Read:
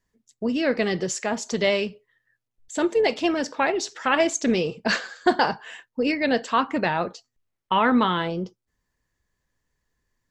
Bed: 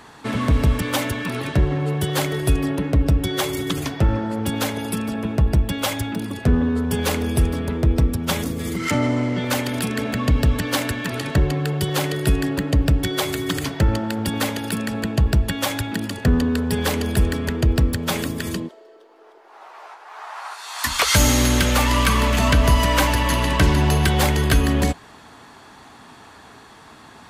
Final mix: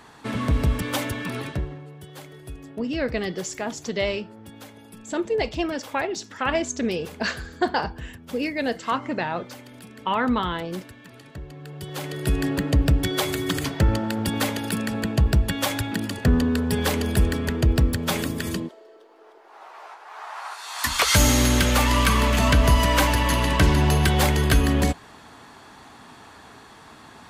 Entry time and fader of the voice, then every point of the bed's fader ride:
2.35 s, -3.5 dB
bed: 1.41 s -4 dB
1.89 s -20 dB
11.47 s -20 dB
12.46 s -1.5 dB

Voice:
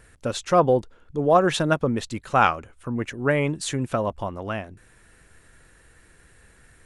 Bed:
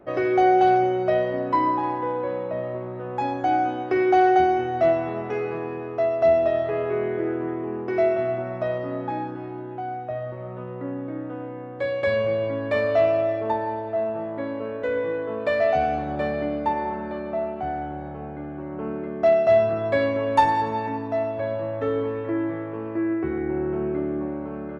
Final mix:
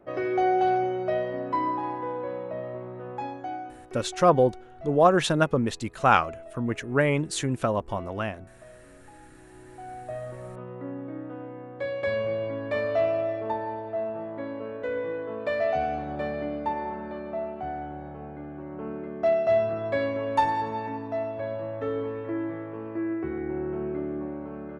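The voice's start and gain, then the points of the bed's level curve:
3.70 s, -1.0 dB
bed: 3.1 s -5.5 dB
4.09 s -23.5 dB
9.16 s -23.5 dB
10.13 s -5 dB

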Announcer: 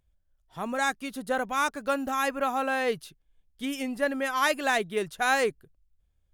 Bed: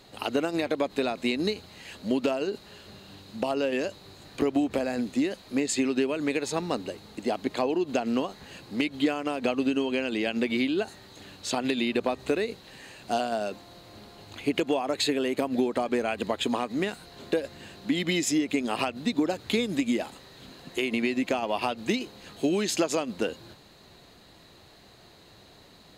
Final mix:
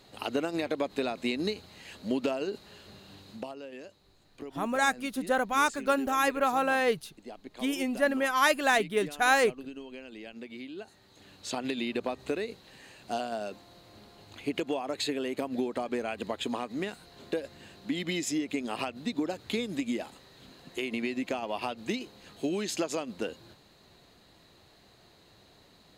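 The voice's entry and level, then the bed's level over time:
4.00 s, +1.0 dB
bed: 3.32 s -3.5 dB
3.56 s -16.5 dB
10.62 s -16.5 dB
11.47 s -5.5 dB

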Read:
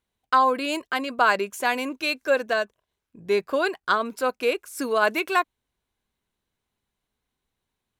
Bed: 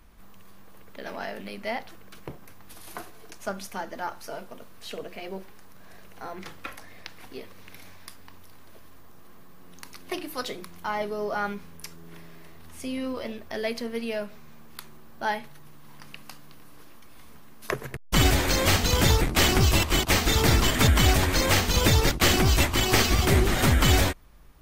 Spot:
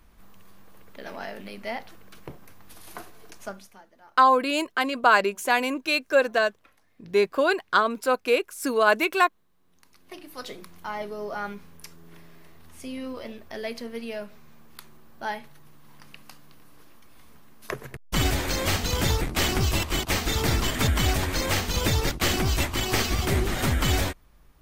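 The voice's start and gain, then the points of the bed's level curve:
3.85 s, +1.5 dB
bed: 3.42 s -1.5 dB
3.89 s -21 dB
9.52 s -21 dB
10.53 s -3.5 dB

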